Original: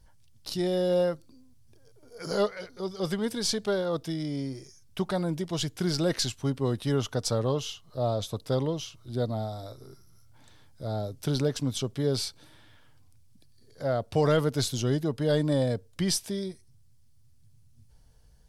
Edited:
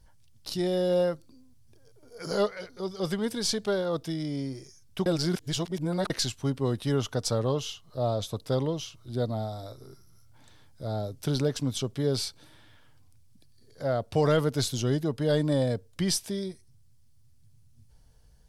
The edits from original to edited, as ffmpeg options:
-filter_complex "[0:a]asplit=3[s0][s1][s2];[s0]atrim=end=5.062[s3];[s1]atrim=start=5.058:end=6.102,asetpts=PTS-STARTPTS,areverse[s4];[s2]atrim=start=6.098[s5];[s3][s4]acrossfade=d=0.004:c1=hsin:c2=hsin[s6];[s6][s5]acrossfade=d=0.004:c1=hsin:c2=hsin"

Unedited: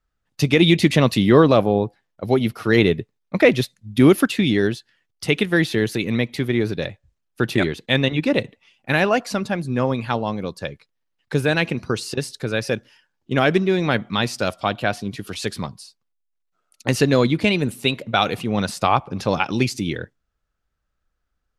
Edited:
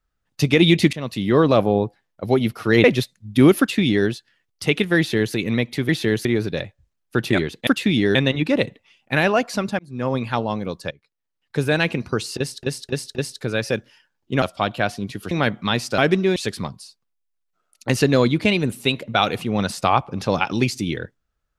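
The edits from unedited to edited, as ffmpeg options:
-filter_complex "[0:a]asplit=16[s0][s1][s2][s3][s4][s5][s6][s7][s8][s9][s10][s11][s12][s13][s14][s15];[s0]atrim=end=0.93,asetpts=PTS-STARTPTS,afade=t=out:st=0.926:d=0.004:c=hsin:silence=0.112202[s16];[s1]atrim=start=0.93:end=2.842,asetpts=PTS-STARTPTS,afade=t=in:d=0.7:silence=0.112202[s17];[s2]atrim=start=3.448:end=6.502[s18];[s3]atrim=start=5.588:end=5.952[s19];[s4]atrim=start=6.498:end=7.922[s20];[s5]atrim=start=4.198:end=4.682[s21];[s6]atrim=start=7.918:end=9.56,asetpts=PTS-STARTPTS,afade=t=out:st=1.638:d=0.004:c=hsin[s22];[s7]atrim=start=9.56:end=10.68,asetpts=PTS-STARTPTS,afade=t=in:d=0.38,afade=t=out:st=1.116:d=0.004:c=hsin:silence=0.125893[s23];[s8]atrim=start=10.68:end=12.402,asetpts=PTS-STARTPTS,afade=t=in:d=0.82:silence=0.125893[s24];[s9]atrim=start=12.138:end=12.402[s25];[s10]atrim=start=12.138:end=12.402[s26];[s11]atrim=start=12.138:end=13.412[s27];[s12]atrim=start=14.458:end=15.352[s28];[s13]atrim=start=13.788:end=14.462[s29];[s14]atrim=start=13.408:end=13.792[s30];[s15]atrim=start=15.348[s31];[s16][s17]concat=n=2:v=0:a=1[s32];[s32][s18]acrossfade=d=0.004:c1=hsin:c2=hsin[s33];[s33][s19]acrossfade=d=0.004:c1=hsin:c2=hsin[s34];[s34][s20]acrossfade=d=0.004:c1=hsin:c2=hsin[s35];[s35][s21]acrossfade=d=0.004:c1=hsin:c2=hsin[s36];[s22][s23][s24]concat=n=3:v=0:a=1[s37];[s36][s37]acrossfade=d=0.004:c1=hsin:c2=hsin[s38];[s38][s25]acrossfade=d=0.004:c1=hsin:c2=hsin[s39];[s39][s26]acrossfade=d=0.004:c1=hsin:c2=hsin[s40];[s40][s27]acrossfade=d=0.004:c1=hsin:c2=hsin[s41];[s41][s28]acrossfade=d=0.004:c1=hsin:c2=hsin[s42];[s42][s29]acrossfade=d=0.004:c1=hsin:c2=hsin[s43];[s43][s30]acrossfade=d=0.004:c1=hsin:c2=hsin[s44];[s44][s31]acrossfade=d=0.004:c1=hsin:c2=hsin"

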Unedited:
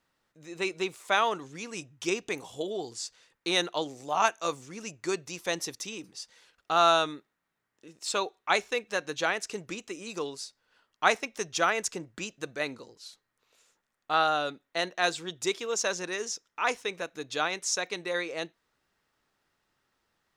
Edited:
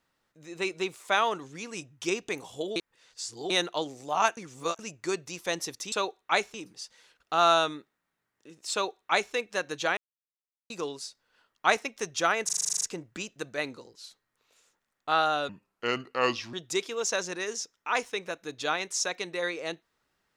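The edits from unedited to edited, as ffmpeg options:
-filter_complex "[0:a]asplit=20[s0][s1][s2][s3][s4][s5][s6][s7][s8][s9][s10][s11][s12][s13][s14][s15][s16][s17][s18][s19];[s0]atrim=end=2.762[s20];[s1]atrim=start=2.758:end=3.502,asetpts=PTS-STARTPTS,areverse[s21];[s2]atrim=start=3.498:end=4.372[s22];[s3]atrim=start=4.368:end=4.792,asetpts=PTS-STARTPTS,areverse[s23];[s4]atrim=start=4.788:end=5.922[s24];[s5]atrim=start=8.098:end=8.722[s25];[s6]atrim=start=5.918:end=9.35,asetpts=PTS-STARTPTS,afade=t=out:st=3.428:d=0.004:c=hsin[s26];[s7]atrim=start=9.35:end=10.08,asetpts=PTS-STARTPTS,volume=0[s27];[s8]atrim=start=10.08:end=11.872,asetpts=PTS-STARTPTS,afade=t=in:d=0.004:c=hsin[s28];[s9]atrim=start=11.828:end=11.872[s29];[s10]atrim=start=11.828:end=11.872[s30];[s11]atrim=start=11.828:end=11.872[s31];[s12]atrim=start=11.828:end=11.872[s32];[s13]atrim=start=11.828:end=11.872[s33];[s14]atrim=start=11.828:end=11.872[s34];[s15]atrim=start=11.828:end=11.872[s35];[s16]atrim=start=11.828:end=11.872[s36];[s17]atrim=start=11.828:end=14.514[s37];[s18]atrim=start=14.51:end=15.25,asetpts=PTS-STARTPTS,asetrate=31311,aresample=44100,atrim=end_sample=45963,asetpts=PTS-STARTPTS[s38];[s19]atrim=start=15.246[s39];[s20][s21]acrossfade=d=0.004:c1=hsin:c2=hsin[s40];[s40][s22]acrossfade=d=0.004:c1=hsin:c2=hsin[s41];[s41][s23]acrossfade=d=0.004:c1=hsin:c2=hsin[s42];[s42][s24]acrossfade=d=0.004:c1=hsin:c2=hsin[s43];[s43][s25]acrossfade=d=0.004:c1=hsin:c2=hsin[s44];[s26][s27][s28]concat=n=3:v=0:a=1[s45];[s44][s45]acrossfade=d=0.004:c1=hsin:c2=hsin[s46];[s46][s29]acrossfade=d=0.004:c1=hsin:c2=hsin[s47];[s47][s30]acrossfade=d=0.004:c1=hsin:c2=hsin[s48];[s48][s31]acrossfade=d=0.004:c1=hsin:c2=hsin[s49];[s49][s32]acrossfade=d=0.004:c1=hsin:c2=hsin[s50];[s50][s33]acrossfade=d=0.004:c1=hsin:c2=hsin[s51];[s51][s34]acrossfade=d=0.004:c1=hsin:c2=hsin[s52];[s52][s35]acrossfade=d=0.004:c1=hsin:c2=hsin[s53];[s53][s36]acrossfade=d=0.004:c1=hsin:c2=hsin[s54];[s54][s37]acrossfade=d=0.004:c1=hsin:c2=hsin[s55];[s55][s38]acrossfade=d=0.004:c1=hsin:c2=hsin[s56];[s56][s39]acrossfade=d=0.004:c1=hsin:c2=hsin"

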